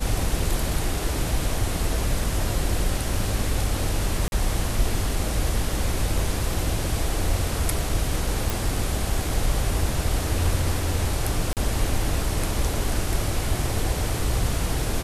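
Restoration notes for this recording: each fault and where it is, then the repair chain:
4.28–4.32 gap 41 ms
8.5 pop
11.53–11.57 gap 38 ms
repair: de-click; interpolate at 4.28, 41 ms; interpolate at 11.53, 38 ms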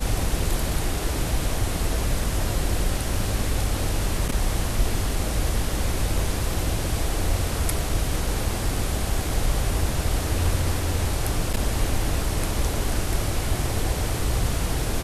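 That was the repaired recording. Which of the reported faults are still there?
none

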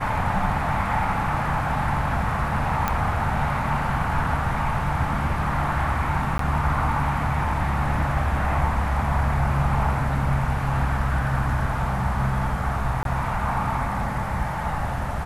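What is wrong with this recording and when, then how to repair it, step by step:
2.88 pop -8 dBFS
6.38–6.39 gap 13 ms
13.03–13.05 gap 22 ms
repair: de-click; interpolate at 6.38, 13 ms; interpolate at 13.03, 22 ms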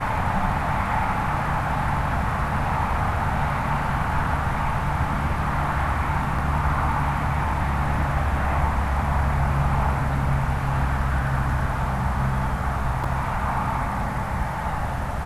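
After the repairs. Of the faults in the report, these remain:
none

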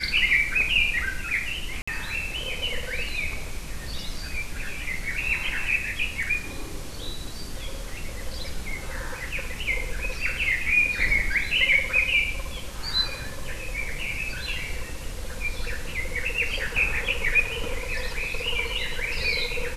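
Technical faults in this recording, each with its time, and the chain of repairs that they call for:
1.82–1.88 gap 55 ms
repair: interpolate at 1.82, 55 ms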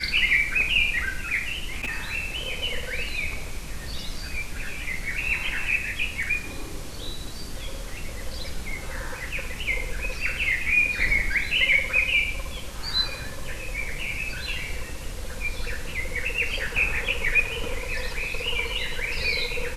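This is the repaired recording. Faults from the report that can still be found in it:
none

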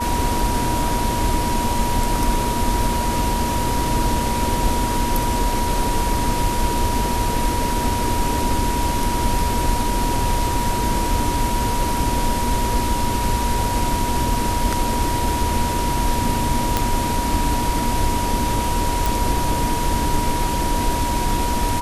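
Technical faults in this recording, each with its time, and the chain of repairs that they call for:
tone 960 Hz -23 dBFS
16.77 pop
19.06 pop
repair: de-click; notch 960 Hz, Q 30

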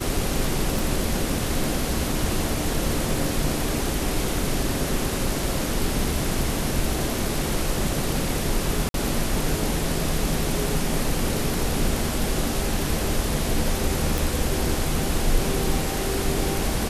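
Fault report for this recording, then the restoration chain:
0.79 pop
8.89–8.94 gap 52 ms
14.18 pop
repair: de-click; interpolate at 8.89, 52 ms

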